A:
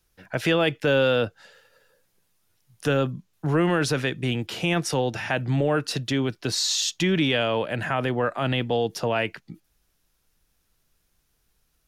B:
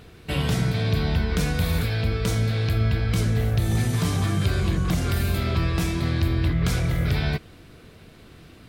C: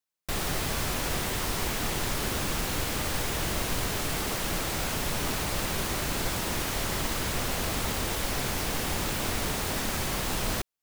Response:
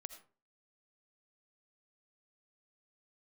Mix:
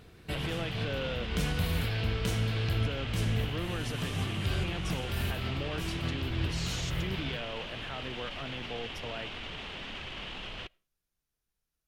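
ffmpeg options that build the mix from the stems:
-filter_complex "[0:a]volume=0.15,asplit=2[s0][s1];[1:a]volume=0.376,asplit=2[s2][s3];[s3]volume=0.282[s4];[2:a]alimiter=level_in=1.26:limit=0.0631:level=0:latency=1:release=24,volume=0.794,lowpass=f=3000:t=q:w=4.3,flanger=delay=1.4:depth=4.7:regen=-58:speed=1.9:shape=triangular,adelay=50,volume=0.596,asplit=2[s5][s6];[s6]volume=0.15[s7];[s1]apad=whole_len=382868[s8];[s2][s8]sidechaincompress=threshold=0.00562:ratio=8:attack=16:release=181[s9];[3:a]atrim=start_sample=2205[s10];[s4][s7]amix=inputs=2:normalize=0[s11];[s11][s10]afir=irnorm=-1:irlink=0[s12];[s0][s9][s5][s12]amix=inputs=4:normalize=0"

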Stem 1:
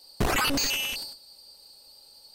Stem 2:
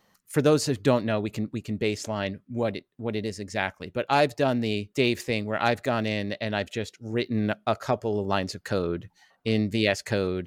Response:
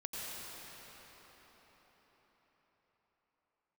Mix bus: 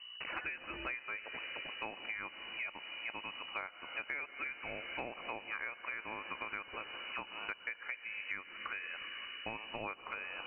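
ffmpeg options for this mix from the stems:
-filter_complex "[0:a]aemphasis=mode=production:type=riaa,volume=0.211[s0];[1:a]highpass=f=650:w=0.5412,highpass=f=650:w=1.3066,aeval=exprs='val(0)+0.00282*(sin(2*PI*60*n/s)+sin(2*PI*2*60*n/s)/2+sin(2*PI*3*60*n/s)/3+sin(2*PI*4*60*n/s)/4+sin(2*PI*5*60*n/s)/5)':c=same,volume=1.06,asplit=2[s1][s2];[s2]volume=0.224[s3];[2:a]atrim=start_sample=2205[s4];[s3][s4]afir=irnorm=-1:irlink=0[s5];[s0][s1][s5]amix=inputs=3:normalize=0,lowpass=f=2600:t=q:w=0.5098,lowpass=f=2600:t=q:w=0.6013,lowpass=f=2600:t=q:w=0.9,lowpass=f=2600:t=q:w=2.563,afreqshift=-3000,acompressor=threshold=0.0126:ratio=12"

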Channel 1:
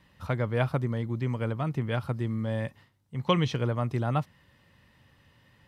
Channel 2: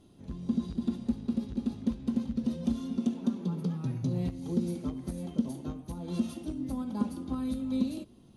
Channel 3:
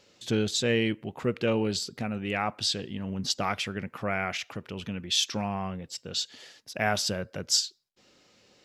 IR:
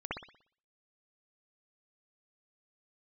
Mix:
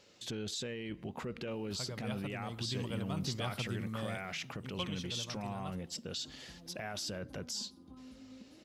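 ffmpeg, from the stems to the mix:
-filter_complex "[0:a]aexciter=amount=3.4:drive=6.7:freq=2700,adelay=1500,volume=0.299,afade=t=in:st=2.35:d=0.37:silence=0.473151,afade=t=out:st=4.54:d=0.31:silence=0.354813,asplit=2[s0][s1];[s1]volume=0.112[s2];[1:a]acompressor=threshold=0.0141:ratio=4,adelay=600,volume=0.178,asplit=2[s3][s4];[s4]volume=0.237[s5];[2:a]acompressor=threshold=0.0398:ratio=6,volume=0.794[s6];[s3][s6]amix=inputs=2:normalize=0,alimiter=level_in=2.11:limit=0.0631:level=0:latency=1:release=20,volume=0.473,volume=1[s7];[3:a]atrim=start_sample=2205[s8];[s2][s5]amix=inputs=2:normalize=0[s9];[s9][s8]afir=irnorm=-1:irlink=0[s10];[s0][s7][s10]amix=inputs=3:normalize=0"

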